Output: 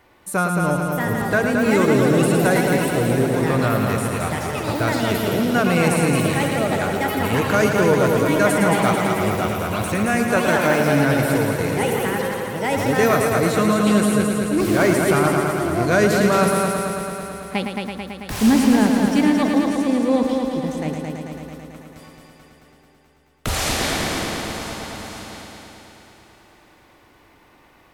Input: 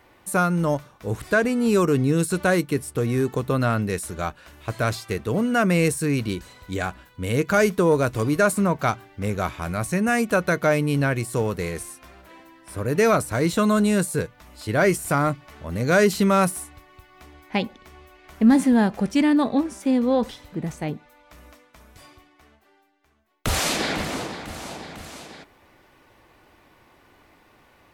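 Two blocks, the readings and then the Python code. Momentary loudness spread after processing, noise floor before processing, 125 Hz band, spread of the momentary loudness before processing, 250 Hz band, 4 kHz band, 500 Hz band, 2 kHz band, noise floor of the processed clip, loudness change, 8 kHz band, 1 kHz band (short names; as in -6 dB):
12 LU, -57 dBFS, +3.0 dB, 14 LU, +3.5 dB, +5.0 dB, +4.0 dB, +4.5 dB, -53 dBFS, +3.5 dB, +3.5 dB, +5.0 dB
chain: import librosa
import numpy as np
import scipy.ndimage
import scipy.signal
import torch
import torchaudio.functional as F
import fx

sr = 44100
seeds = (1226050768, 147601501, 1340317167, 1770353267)

y = fx.echo_heads(x, sr, ms=110, heads='first and second', feedback_pct=72, wet_db=-7.0)
y = fx.echo_pitch(y, sr, ms=719, semitones=5, count=2, db_per_echo=-6.0)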